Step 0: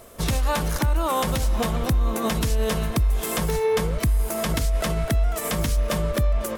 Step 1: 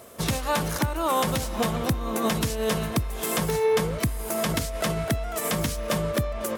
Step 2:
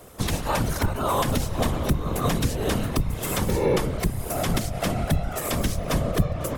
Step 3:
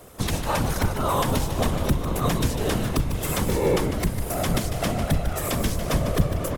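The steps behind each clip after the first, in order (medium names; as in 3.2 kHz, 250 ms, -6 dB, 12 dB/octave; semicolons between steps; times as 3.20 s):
high-pass 98 Hz 12 dB/octave
octave divider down 2 oct, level +4 dB; whisper effect; trim -1 dB
frequency-shifting echo 150 ms, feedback 60%, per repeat -94 Hz, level -9.5 dB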